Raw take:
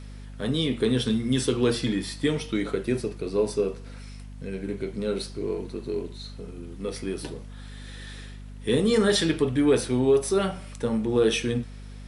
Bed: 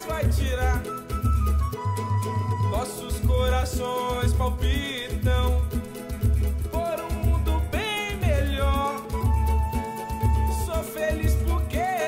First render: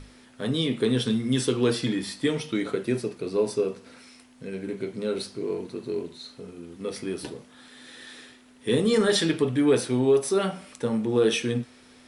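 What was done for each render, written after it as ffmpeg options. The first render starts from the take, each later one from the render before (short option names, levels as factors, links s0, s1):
-af "bandreject=f=50:t=h:w=6,bandreject=f=100:t=h:w=6,bandreject=f=150:t=h:w=6,bandreject=f=200:t=h:w=6"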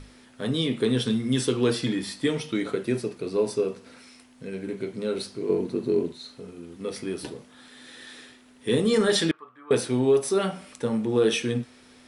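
-filter_complex "[0:a]asettb=1/sr,asplit=3[s0][s1][s2];[s0]atrim=end=5.494[s3];[s1]atrim=start=5.49:end=6.12,asetpts=PTS-STARTPTS,afade=t=in:d=0.004:c=qsin,afade=t=out:st=0.626:d=0.004:c=qsin,equalizer=f=240:w=0.42:g=8[s4];[s2]atrim=start=6.116[s5];[s3][s4]acrossfade=d=0.004:c1=hsin:c2=qsin[s6];[s6][s5]acrossfade=d=0.004:c1=qsin:c2=hsin,asettb=1/sr,asplit=3[s7][s8][s9];[s7]atrim=end=9.314[s10];[s8]atrim=start=9.31:end=9.71,asetpts=PTS-STARTPTS,afade=t=in:d=0.004:c=qsin,afade=t=out:st=0.396:d=0.004:c=qsin,bandpass=f=1200:t=q:w=8.6[s11];[s9]atrim=start=9.706[s12];[s10][s11]acrossfade=d=0.004:c1=hsin:c2=qsin[s13];[s13][s12]acrossfade=d=0.004:c1=qsin:c2=hsin"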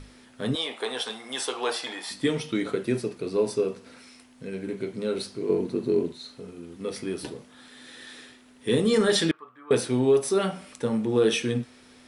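-filter_complex "[0:a]asettb=1/sr,asplit=3[s0][s1][s2];[s0]atrim=end=0.554[s3];[s1]atrim=start=0.55:end=2.11,asetpts=PTS-STARTPTS,afade=t=in:d=0.004:c=qsin,afade=t=out:st=1.556:d=0.004:c=qsin,highpass=f=770:t=q:w=3.4[s4];[s2]atrim=start=2.106[s5];[s3][s4]acrossfade=d=0.004:c1=hsin:c2=qsin[s6];[s6][s5]acrossfade=d=0.004:c1=qsin:c2=hsin"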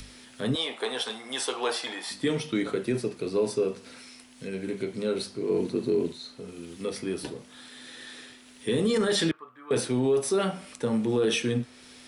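-filter_complex "[0:a]acrossover=split=100|2200[s0][s1][s2];[s2]acompressor=mode=upward:threshold=0.00708:ratio=2.5[s3];[s0][s1][s3]amix=inputs=3:normalize=0,alimiter=limit=0.141:level=0:latency=1:release=15"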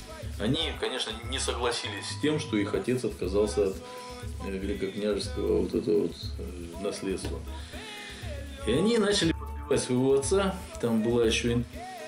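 -filter_complex "[1:a]volume=0.168[s0];[0:a][s0]amix=inputs=2:normalize=0"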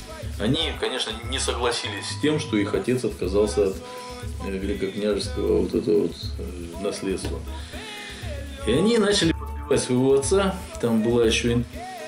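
-af "volume=1.78"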